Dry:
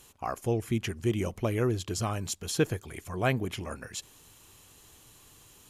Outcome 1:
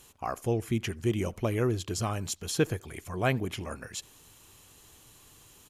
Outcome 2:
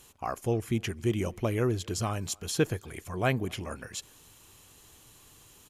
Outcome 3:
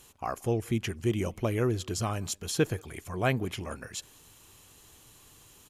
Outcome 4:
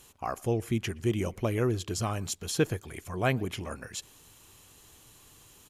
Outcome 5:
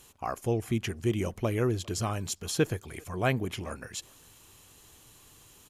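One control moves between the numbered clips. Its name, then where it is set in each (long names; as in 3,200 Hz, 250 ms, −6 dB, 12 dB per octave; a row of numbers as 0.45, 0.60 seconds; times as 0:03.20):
far-end echo of a speakerphone, delay time: 80, 260, 180, 120, 400 milliseconds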